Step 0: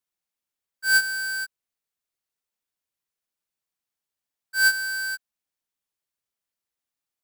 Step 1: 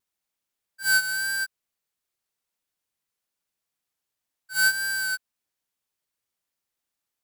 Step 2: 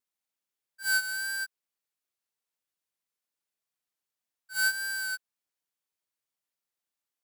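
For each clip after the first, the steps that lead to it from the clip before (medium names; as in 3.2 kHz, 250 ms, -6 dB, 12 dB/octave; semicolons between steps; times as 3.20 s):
compression, threshold -21 dBFS, peak gain reduction 5 dB; pre-echo 41 ms -12 dB; vibrato 1.7 Hz 28 cents; trim +3 dB
bass shelf 93 Hz -11.5 dB; trim -5.5 dB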